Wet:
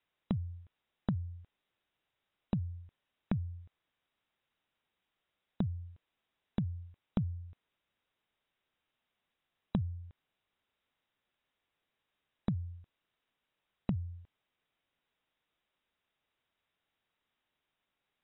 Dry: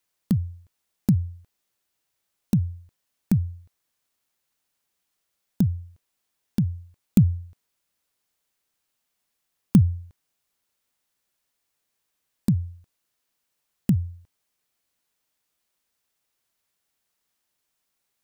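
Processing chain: compression 6:1, threshold -30 dBFS, peak gain reduction 17.5 dB; brick-wall FIR low-pass 3.9 kHz; trim -1 dB

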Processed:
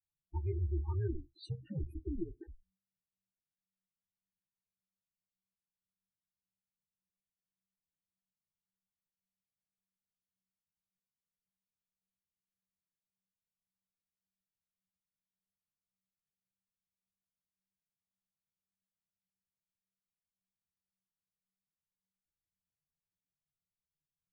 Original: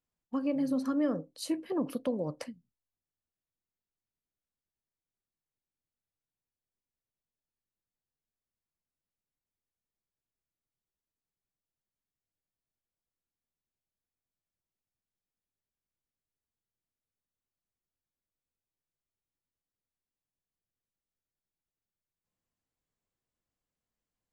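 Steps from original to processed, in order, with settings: loudest bins only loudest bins 8; frequency shift -190 Hz; three-phase chorus; trim -2.5 dB

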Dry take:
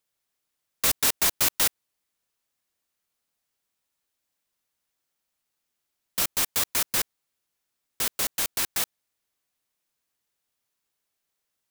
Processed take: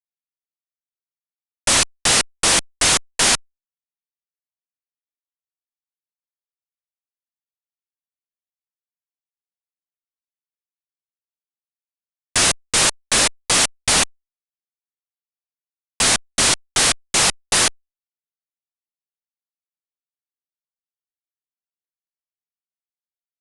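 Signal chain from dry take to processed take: fuzz box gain 35 dB, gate -42 dBFS; speed mistake 15 ips tape played at 7.5 ips

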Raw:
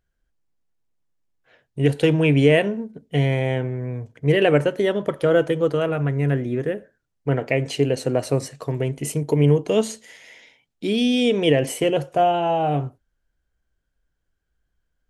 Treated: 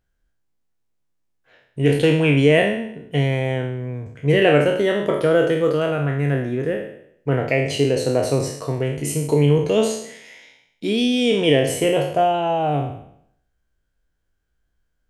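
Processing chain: spectral sustain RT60 0.69 s

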